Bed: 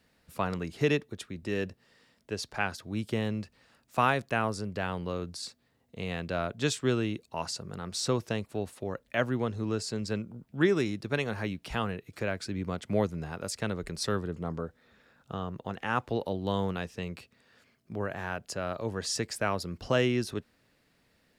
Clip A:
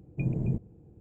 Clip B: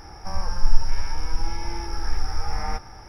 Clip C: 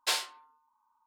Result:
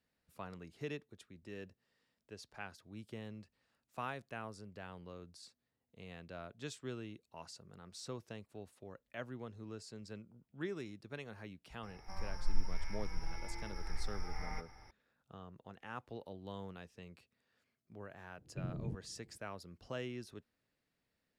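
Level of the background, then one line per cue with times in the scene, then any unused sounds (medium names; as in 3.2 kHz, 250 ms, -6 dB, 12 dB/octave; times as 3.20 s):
bed -16.5 dB
11.83 s: add B -16 dB + peaking EQ 2.1 kHz +12 dB 0.22 oct
18.38 s: add A -12.5 dB + resampled via 16 kHz
not used: C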